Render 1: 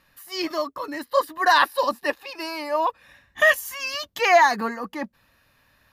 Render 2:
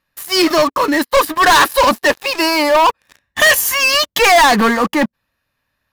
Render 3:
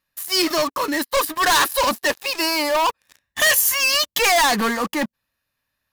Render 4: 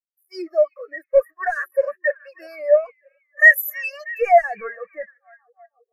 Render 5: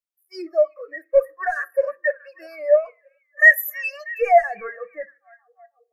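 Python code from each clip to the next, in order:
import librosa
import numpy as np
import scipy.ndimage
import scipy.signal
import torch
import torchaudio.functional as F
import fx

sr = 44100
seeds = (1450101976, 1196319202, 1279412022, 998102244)

y1 = fx.leveller(x, sr, passes=5)
y2 = fx.high_shelf(y1, sr, hz=3800.0, db=8.5)
y2 = y2 * 10.0 ** (-8.5 / 20.0)
y3 = fx.fixed_phaser(y2, sr, hz=950.0, stages=6)
y3 = fx.echo_stepped(y3, sr, ms=318, hz=2700.0, octaves=-0.7, feedback_pct=70, wet_db=-5.5)
y3 = fx.spectral_expand(y3, sr, expansion=2.5)
y3 = y3 * 10.0 ** (5.5 / 20.0)
y4 = fx.rev_fdn(y3, sr, rt60_s=0.33, lf_ratio=1.05, hf_ratio=0.55, size_ms=20.0, drr_db=14.5)
y4 = y4 * 10.0 ** (-1.0 / 20.0)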